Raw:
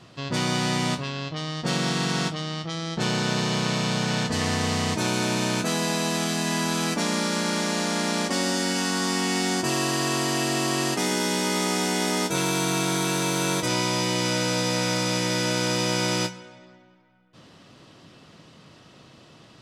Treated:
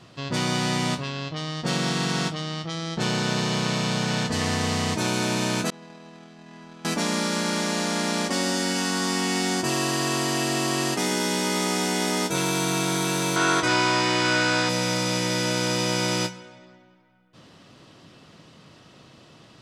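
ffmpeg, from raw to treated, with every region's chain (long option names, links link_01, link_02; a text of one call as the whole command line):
ffmpeg -i in.wav -filter_complex "[0:a]asettb=1/sr,asplit=3[link_01][link_02][link_03];[link_01]atrim=end=5.704[link_04];[link_02]atrim=start=5.7:end=6.85,asetpts=PTS-STARTPTS,afade=type=in:duration=0.004:curve=qsin,afade=type=out:start_time=1.146:duration=0.004:curve=qsin,highshelf=frequency=3700:gain=-6.5,agate=range=-33dB:threshold=-15dB:ratio=3:release=100:detection=peak,adynamicsmooth=sensitivity=7.5:basefreq=5000[link_05];[link_03]atrim=start=6.846[link_06];[link_04][link_05]acrossfade=duration=0.004:curve1=hsin:curve2=qsin[link_07];[link_07][link_06]acrossfade=duration=0.004:curve1=qsin:curve2=hsin,asettb=1/sr,asplit=3[link_08][link_09][link_10];[link_08]atrim=end=13.364[link_11];[link_09]atrim=start=13.36:end=14.69,asetpts=PTS-STARTPTS,afade=type=in:duration=0.004:curve=qsin,afade=type=out:start_time=1.326:duration=0.004:curve=qsin,lowpass=7600,equalizer=frequency=1400:width=1.1:gain=10,aecho=1:1:2.8:0.43,atrim=end_sample=58653[link_12];[link_10]atrim=start=14.686[link_13];[link_11][link_12]acrossfade=duration=0.004:curve1=hsin:curve2=qsin[link_14];[link_14][link_13]acrossfade=duration=0.004:curve1=qsin:curve2=hsin" out.wav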